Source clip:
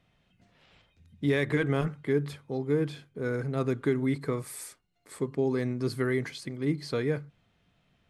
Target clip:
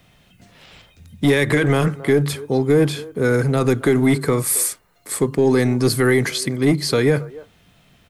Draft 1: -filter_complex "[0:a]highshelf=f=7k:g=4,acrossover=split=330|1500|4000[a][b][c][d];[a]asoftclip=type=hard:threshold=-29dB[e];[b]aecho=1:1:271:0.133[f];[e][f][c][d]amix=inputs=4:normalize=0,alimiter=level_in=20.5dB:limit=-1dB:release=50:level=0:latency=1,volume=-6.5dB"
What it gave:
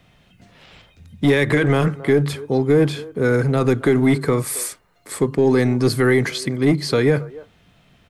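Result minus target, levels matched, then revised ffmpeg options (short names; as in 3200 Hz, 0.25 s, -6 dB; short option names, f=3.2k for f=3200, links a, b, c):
8000 Hz band -6.0 dB
-filter_complex "[0:a]highshelf=f=7k:g=14,acrossover=split=330|1500|4000[a][b][c][d];[a]asoftclip=type=hard:threshold=-29dB[e];[b]aecho=1:1:271:0.133[f];[e][f][c][d]amix=inputs=4:normalize=0,alimiter=level_in=20.5dB:limit=-1dB:release=50:level=0:latency=1,volume=-6.5dB"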